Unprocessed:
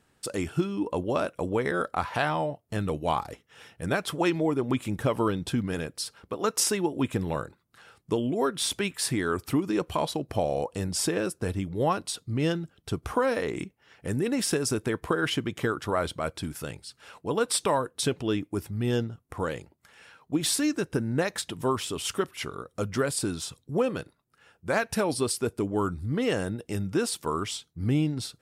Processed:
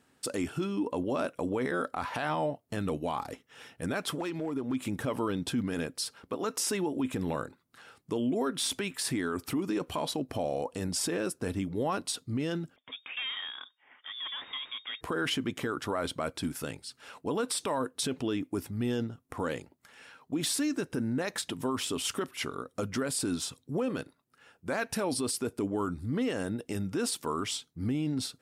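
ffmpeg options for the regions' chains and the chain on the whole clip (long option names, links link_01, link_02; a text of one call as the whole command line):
ffmpeg -i in.wav -filter_complex "[0:a]asettb=1/sr,asplit=3[link_01][link_02][link_03];[link_01]atrim=end=4.154[link_04];[link_02]atrim=start=4.15:end=4.84,asetpts=PTS-STARTPTS,afade=type=in:duration=0.004:curve=qsin,afade=type=out:start_time=0.686:duration=0.004:curve=qsin,acompressor=threshold=-31dB:ratio=4:attack=3.2:release=140:knee=1:detection=peak,volume=27.5dB,asoftclip=hard,volume=-27.5dB[link_05];[link_03]atrim=start=4.836[link_06];[link_04][link_05]acrossfade=duration=0.004:curve1=hsin:curve2=qsin[link_07];[link_07][link_06]acrossfade=duration=0.004:curve1=qsin:curve2=hsin,asettb=1/sr,asplit=3[link_08][link_09][link_10];[link_08]atrim=end=12.764[link_11];[link_09]atrim=start=12.76:end=15.01,asetpts=PTS-STARTPTS,afade=type=in:duration=0.004:curve=qsin,afade=type=out:start_time=2.246:duration=0.004:curve=qsin,highpass=frequency=910:poles=1,aeval=exprs='(tanh(39.8*val(0)+0.15)-tanh(0.15))/39.8':channel_layout=same,lowpass=frequency=3100:width_type=q:width=0.5098,lowpass=frequency=3100:width_type=q:width=0.6013,lowpass=frequency=3100:width_type=q:width=0.9,lowpass=frequency=3100:width_type=q:width=2.563,afreqshift=-3700[link_12];[link_10]atrim=start=15.006[link_13];[link_11][link_12]acrossfade=duration=0.004:curve1=hsin:curve2=qsin[link_14];[link_14][link_13]acrossfade=duration=0.004:curve1=qsin:curve2=hsin,equalizer=frequency=260:width=6.6:gain=8,alimiter=limit=-21.5dB:level=0:latency=1:release=29,lowshelf=frequency=94:gain=-10.5" out.wav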